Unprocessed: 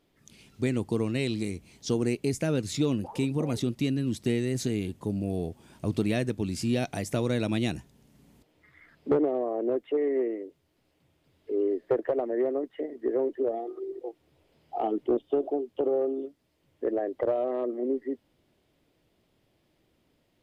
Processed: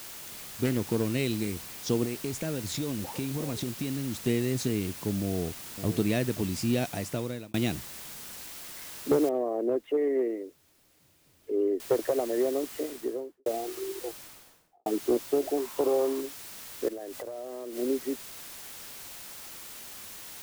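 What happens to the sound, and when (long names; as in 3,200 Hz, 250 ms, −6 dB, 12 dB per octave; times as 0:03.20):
0:00.64–0:01.13: phase distortion by the signal itself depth 0.21 ms
0:02.04–0:04.27: downward compressor, threshold −28 dBFS
0:05.24–0:05.90: delay throw 530 ms, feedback 10%, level −10.5 dB
0:06.67–0:07.54: fade out equal-power
0:09.29: noise floor change −43 dB −69 dB
0:11.80: noise floor change −69 dB −44 dB
0:12.82–0:13.46: fade out and dull
0:14.05–0:14.86: fade out and dull
0:15.57–0:16.21: parametric band 1,000 Hz +12 dB 0.54 octaves
0:16.88–0:17.77: downward compressor 16 to 1, threshold −34 dBFS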